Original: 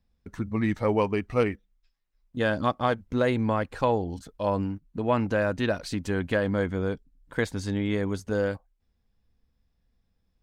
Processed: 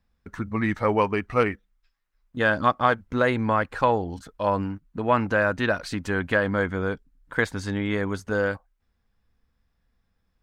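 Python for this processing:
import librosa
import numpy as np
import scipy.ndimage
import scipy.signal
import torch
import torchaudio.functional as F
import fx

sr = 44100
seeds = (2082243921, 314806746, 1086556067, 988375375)

y = fx.peak_eq(x, sr, hz=1400.0, db=8.5, octaves=1.5)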